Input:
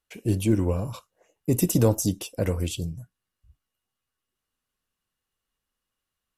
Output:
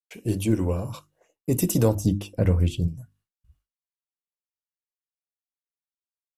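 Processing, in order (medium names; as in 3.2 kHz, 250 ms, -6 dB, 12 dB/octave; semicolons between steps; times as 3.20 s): hum notches 50/100/150/200/250/300/350 Hz; expander -60 dBFS; 1.95–2.88 s: tone controls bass +8 dB, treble -10 dB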